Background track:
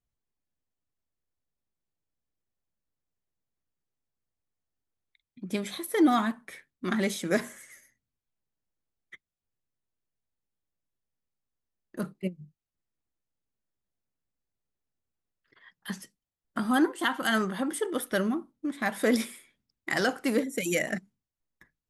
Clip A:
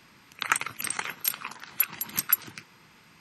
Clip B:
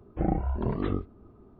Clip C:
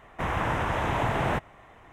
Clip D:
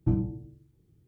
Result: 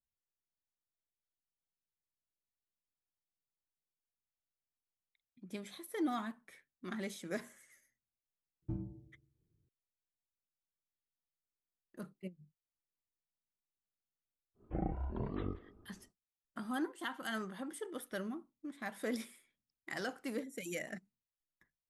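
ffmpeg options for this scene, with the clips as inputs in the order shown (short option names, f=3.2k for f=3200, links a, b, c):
-filter_complex "[0:a]volume=-13.5dB[a];[4:a]bandreject=f=800:w=11[b];[2:a]asplit=2[c][d];[d]adelay=180,highpass=300,lowpass=3.4k,asoftclip=type=hard:threshold=-22.5dB,volume=-16dB[e];[c][e]amix=inputs=2:normalize=0[f];[b]atrim=end=1.07,asetpts=PTS-STARTPTS,volume=-15dB,afade=t=in:d=0.004:c=hsin,afade=t=out:st=1.066:d=0.004:c=hsin,adelay=8620[g];[f]atrim=end=1.59,asetpts=PTS-STARTPTS,volume=-10.5dB,afade=t=in:d=0.1,afade=t=out:st=1.49:d=0.1,adelay=14540[h];[a][g][h]amix=inputs=3:normalize=0"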